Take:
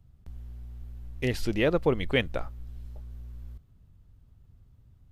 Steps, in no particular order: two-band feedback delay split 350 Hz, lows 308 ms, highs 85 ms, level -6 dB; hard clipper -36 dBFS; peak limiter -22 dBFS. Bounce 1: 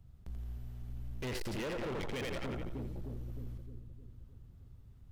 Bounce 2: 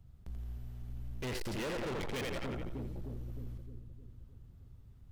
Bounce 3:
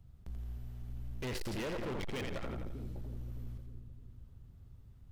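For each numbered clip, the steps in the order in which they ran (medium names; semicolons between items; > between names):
two-band feedback delay > peak limiter > hard clipper; two-band feedback delay > hard clipper > peak limiter; peak limiter > two-band feedback delay > hard clipper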